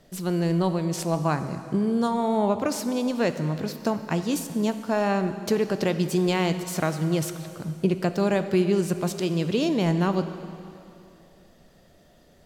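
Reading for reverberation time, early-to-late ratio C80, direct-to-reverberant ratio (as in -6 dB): 2.7 s, 11.0 dB, 9.5 dB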